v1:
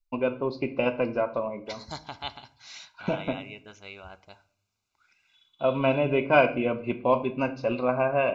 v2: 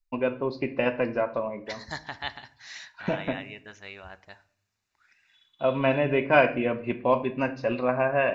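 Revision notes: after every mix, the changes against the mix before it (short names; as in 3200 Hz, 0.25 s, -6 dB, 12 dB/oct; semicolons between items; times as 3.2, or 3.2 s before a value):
master: remove Butterworth band-stop 1800 Hz, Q 3.5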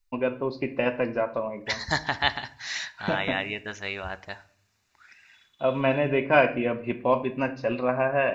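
second voice +10.0 dB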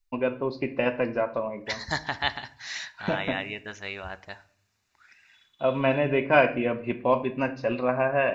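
second voice -3.0 dB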